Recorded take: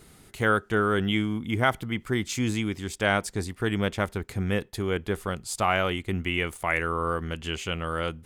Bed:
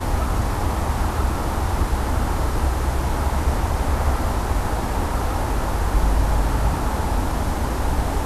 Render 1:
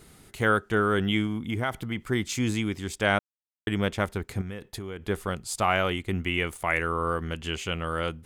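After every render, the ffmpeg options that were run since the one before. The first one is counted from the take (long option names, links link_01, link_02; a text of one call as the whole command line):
ffmpeg -i in.wav -filter_complex "[0:a]asettb=1/sr,asplit=3[link_01][link_02][link_03];[link_01]atrim=end=1.264[link_04];[link_02]atrim=start=1.26:end=2.04,asetpts=PTS-STARTPTS,afade=type=in:duration=0.004:curve=qsin,afade=type=out:start_time=0.776:duration=0.004:curve=qsin,acompressor=threshold=-25dB:ratio=2.5:attack=3.2:release=140:knee=1:detection=peak[link_05];[link_03]atrim=start=2.036[link_06];[link_04][link_05]acrossfade=duration=0.004:curve1=hsin:curve2=qsin[link_07];[link_07][link_06]acrossfade=duration=0.004:curve1=qsin:curve2=hsin,asettb=1/sr,asplit=3[link_08][link_09][link_10];[link_08]atrim=end=4.414[link_11];[link_09]atrim=start=4.41:end=5.07,asetpts=PTS-STARTPTS,afade=type=in:duration=0.004:curve=qsin,afade=type=out:start_time=0.656:duration=0.004:curve=qsin,acompressor=threshold=-31dB:ratio=10:attack=3.2:release=140:knee=1:detection=peak[link_12];[link_10]atrim=start=5.066[link_13];[link_11][link_12]acrossfade=duration=0.004:curve1=hsin:curve2=qsin[link_14];[link_14][link_13]acrossfade=duration=0.004:curve1=qsin:curve2=hsin,asplit=3[link_15][link_16][link_17];[link_15]atrim=end=3.19,asetpts=PTS-STARTPTS,afade=type=out:start_time=3.186:duration=0.004:curve=hsin[link_18];[link_16]atrim=start=3.19:end=3.67,asetpts=PTS-STARTPTS,volume=0[link_19];[link_17]atrim=start=3.67,asetpts=PTS-STARTPTS,afade=type=in:duration=0.004:curve=hsin[link_20];[link_18][link_19][link_20]concat=n=3:v=0:a=1" out.wav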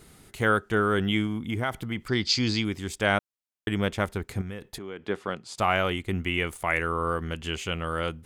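ffmpeg -i in.wav -filter_complex "[0:a]asettb=1/sr,asplit=3[link_01][link_02][link_03];[link_01]atrim=end=2.084[link_04];[link_02]atrim=start=2.08:end=2.65,asetpts=PTS-STARTPTS,afade=type=in:duration=0.004:curve=qsin,afade=type=out:start_time=0.566:duration=0.004:curve=qsin,lowpass=frequency=4700:width_type=q:width=12[link_05];[link_03]atrim=start=2.646[link_06];[link_04][link_05]acrossfade=duration=0.004:curve1=hsin:curve2=qsin[link_07];[link_07][link_06]acrossfade=duration=0.004:curve1=qsin:curve2=hsin,asettb=1/sr,asplit=3[link_08][link_09][link_10];[link_08]atrim=end=4.784[link_11];[link_09]atrim=start=4.78:end=5.58,asetpts=PTS-STARTPTS,afade=type=in:duration=0.004:curve=qsin,afade=type=out:start_time=0.796:duration=0.004:curve=qsin,highpass=190,lowpass=4600[link_12];[link_10]atrim=start=5.576[link_13];[link_11][link_12]acrossfade=duration=0.004:curve1=hsin:curve2=qsin[link_14];[link_14][link_13]acrossfade=duration=0.004:curve1=qsin:curve2=hsin" out.wav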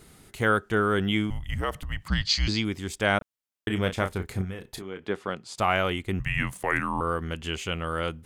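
ffmpeg -i in.wav -filter_complex "[0:a]asettb=1/sr,asplit=3[link_01][link_02][link_03];[link_01]atrim=end=1.304[link_04];[link_02]atrim=start=1.3:end=2.48,asetpts=PTS-STARTPTS,afade=type=in:duration=0.004:curve=qsin,afade=type=out:start_time=1.176:duration=0.004:curve=qsin,afreqshift=-190[link_05];[link_03]atrim=start=2.476[link_06];[link_04][link_05]acrossfade=duration=0.004:curve1=hsin:curve2=qsin[link_07];[link_07][link_06]acrossfade=duration=0.004:curve1=qsin:curve2=hsin,asettb=1/sr,asplit=3[link_08][link_09][link_10];[link_08]atrim=end=3.184[link_11];[link_09]atrim=start=3.18:end=5,asetpts=PTS-STARTPTS,afade=type=in:duration=0.004:curve=qsin,afade=type=out:start_time=1.816:duration=0.004:curve=qsin,asplit=2[link_12][link_13];[link_13]adelay=32,volume=-8dB[link_14];[link_12][link_14]amix=inputs=2:normalize=0,atrim=end_sample=80262[link_15];[link_10]atrim=start=4.996[link_16];[link_11][link_15]acrossfade=duration=0.004:curve1=hsin:curve2=qsin[link_17];[link_17][link_16]acrossfade=duration=0.004:curve1=qsin:curve2=hsin,asettb=1/sr,asplit=3[link_18][link_19][link_20];[link_18]atrim=end=6.194[link_21];[link_19]atrim=start=6.19:end=7.01,asetpts=PTS-STARTPTS,afade=type=in:duration=0.004:curve=qsin,afade=type=out:start_time=0.816:duration=0.004:curve=qsin,afreqshift=-210[link_22];[link_20]atrim=start=7.006[link_23];[link_21][link_22]acrossfade=duration=0.004:curve1=hsin:curve2=qsin[link_24];[link_24][link_23]acrossfade=duration=0.004:curve1=qsin:curve2=hsin" out.wav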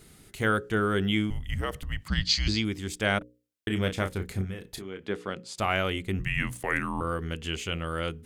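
ffmpeg -i in.wav -af "equalizer=frequency=930:width_type=o:width=1.3:gain=-5.5,bandreject=frequency=60:width_type=h:width=6,bandreject=frequency=120:width_type=h:width=6,bandreject=frequency=180:width_type=h:width=6,bandreject=frequency=240:width_type=h:width=6,bandreject=frequency=300:width_type=h:width=6,bandreject=frequency=360:width_type=h:width=6,bandreject=frequency=420:width_type=h:width=6,bandreject=frequency=480:width_type=h:width=6,bandreject=frequency=540:width_type=h:width=6" out.wav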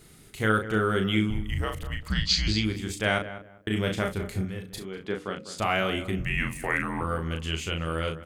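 ffmpeg -i in.wav -filter_complex "[0:a]asplit=2[link_01][link_02];[link_02]adelay=37,volume=-5.5dB[link_03];[link_01][link_03]amix=inputs=2:normalize=0,asplit=2[link_04][link_05];[link_05]adelay=197,lowpass=frequency=1500:poles=1,volume=-12dB,asplit=2[link_06][link_07];[link_07]adelay=197,lowpass=frequency=1500:poles=1,volume=0.25,asplit=2[link_08][link_09];[link_09]adelay=197,lowpass=frequency=1500:poles=1,volume=0.25[link_10];[link_04][link_06][link_08][link_10]amix=inputs=4:normalize=0" out.wav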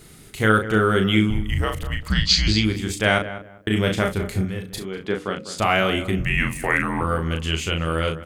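ffmpeg -i in.wav -af "volume=6.5dB" out.wav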